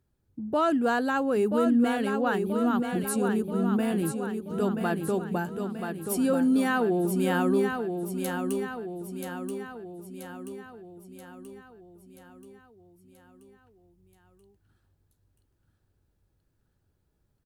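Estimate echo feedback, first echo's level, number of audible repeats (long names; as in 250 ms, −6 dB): 55%, −6.0 dB, 6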